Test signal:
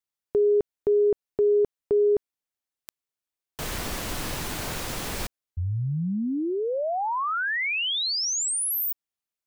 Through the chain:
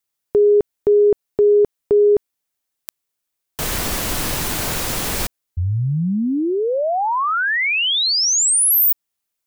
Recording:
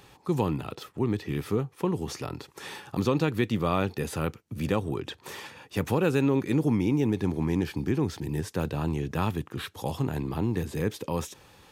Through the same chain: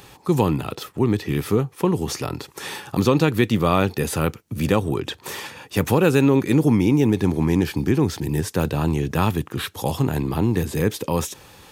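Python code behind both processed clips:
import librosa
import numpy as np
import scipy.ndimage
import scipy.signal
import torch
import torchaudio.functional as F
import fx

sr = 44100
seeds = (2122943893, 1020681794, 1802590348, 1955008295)

y = fx.high_shelf(x, sr, hz=7300.0, db=6.0)
y = y * 10.0 ** (7.5 / 20.0)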